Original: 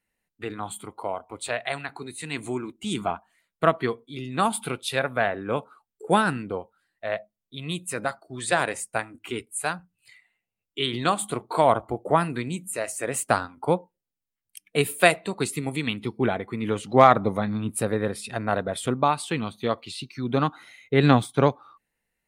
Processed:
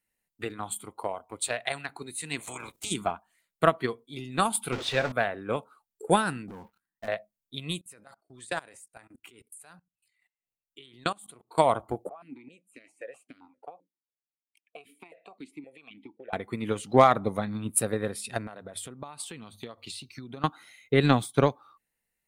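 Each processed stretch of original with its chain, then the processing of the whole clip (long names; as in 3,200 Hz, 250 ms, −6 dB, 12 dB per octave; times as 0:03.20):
0:02.39–0:02.90: ceiling on every frequency bin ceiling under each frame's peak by 28 dB + output level in coarse steps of 9 dB
0:04.72–0:05.12: converter with a step at zero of −24 dBFS + high-frequency loss of the air 150 metres
0:06.48–0:07.08: drawn EQ curve 120 Hz 0 dB, 210 Hz +6 dB, 610 Hz −12 dB, 920 Hz +1 dB, 4,700 Hz −19 dB, 15,000 Hz 0 dB + downward compressor, threshold −41 dBFS + leveller curve on the samples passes 3
0:07.81–0:11.58: output level in coarse steps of 23 dB + shaped tremolo triangle 3.8 Hz, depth 50%
0:12.09–0:16.33: dynamic equaliser 1,000 Hz, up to +4 dB, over −34 dBFS, Q 0.92 + downward compressor 16 to 1, threshold −26 dBFS + formant filter that steps through the vowels 7.6 Hz
0:18.47–0:20.44: mains-hum notches 50/100 Hz + downward compressor 5 to 1, threshold −35 dBFS
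whole clip: high-shelf EQ 5,600 Hz +9 dB; transient designer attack +6 dB, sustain 0 dB; level −6 dB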